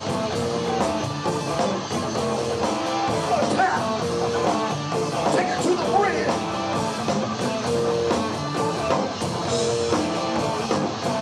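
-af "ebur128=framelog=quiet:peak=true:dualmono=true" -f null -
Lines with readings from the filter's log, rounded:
Integrated loudness:
  I:         -20.4 LUFS
  Threshold: -30.4 LUFS
Loudness range:
  LRA:         1.8 LU
  Threshold: -40.2 LUFS
  LRA low:   -21.0 LUFS
  LRA high:  -19.2 LUFS
True peak:
  Peak:       -8.0 dBFS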